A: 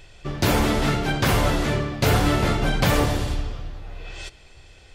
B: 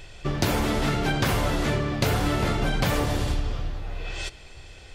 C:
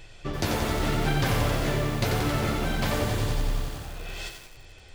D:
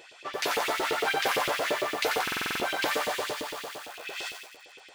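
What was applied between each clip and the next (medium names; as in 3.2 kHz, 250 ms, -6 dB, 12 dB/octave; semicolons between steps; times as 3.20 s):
compression, threshold -24 dBFS, peak gain reduction 9.5 dB; trim +3.5 dB
flange 0.89 Hz, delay 5.9 ms, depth 7.7 ms, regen -38%; bit-crushed delay 90 ms, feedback 80%, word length 7-bit, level -5 dB
LFO high-pass saw up 8.8 Hz 350–3200 Hz; buffer glitch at 2.23 s, samples 2048, times 7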